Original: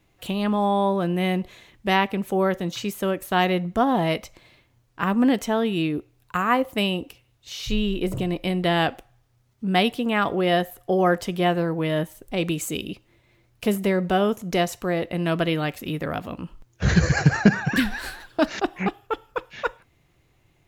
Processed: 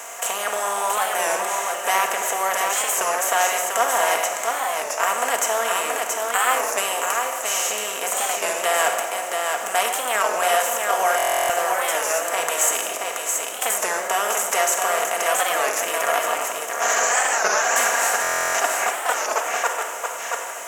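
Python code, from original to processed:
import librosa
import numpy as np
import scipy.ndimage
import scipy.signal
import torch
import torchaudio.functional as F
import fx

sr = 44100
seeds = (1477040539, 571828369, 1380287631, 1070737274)

p1 = fx.bin_compress(x, sr, power=0.4)
p2 = scipy.signal.sosfilt(scipy.signal.butter(4, 580.0, 'highpass', fs=sr, output='sos'), p1)
p3 = fx.high_shelf_res(p2, sr, hz=5300.0, db=8.5, q=3.0)
p4 = p3 + fx.echo_single(p3, sr, ms=677, db=-4.0, dry=0)
p5 = fx.room_shoebox(p4, sr, seeds[0], volume_m3=4000.0, walls='mixed', distance_m=1.7)
p6 = fx.buffer_glitch(p5, sr, at_s=(11.17, 18.22), block=1024, repeats=13)
p7 = fx.record_warp(p6, sr, rpm=33.33, depth_cents=160.0)
y = p7 * librosa.db_to_amplitude(-4.0)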